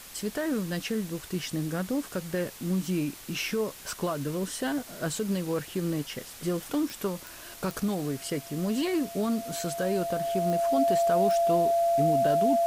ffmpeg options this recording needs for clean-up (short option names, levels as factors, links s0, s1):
-af "adeclick=t=4,bandreject=f=680:w=30,afwtdn=0.0056"